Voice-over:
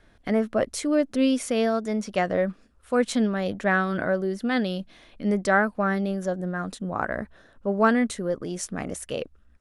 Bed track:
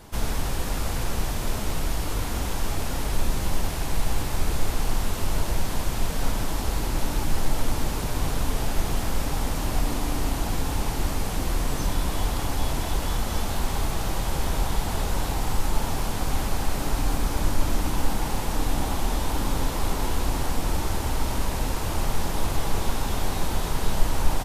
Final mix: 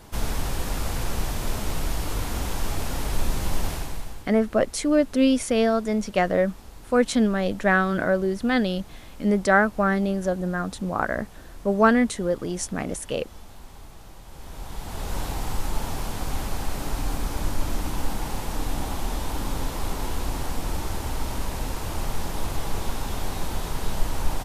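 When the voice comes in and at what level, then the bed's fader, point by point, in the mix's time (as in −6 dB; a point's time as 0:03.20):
4.00 s, +2.5 dB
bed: 0:03.73 −0.5 dB
0:04.30 −18.5 dB
0:14.25 −18.5 dB
0:15.16 −3 dB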